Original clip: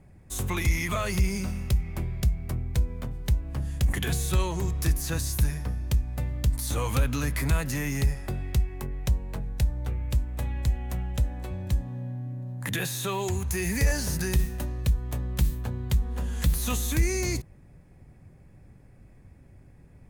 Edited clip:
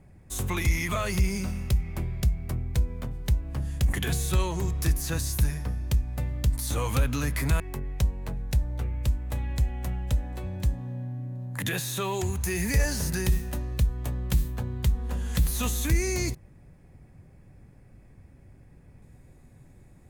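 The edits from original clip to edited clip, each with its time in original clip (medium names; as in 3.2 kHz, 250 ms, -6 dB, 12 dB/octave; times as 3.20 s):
7.60–8.67 s: delete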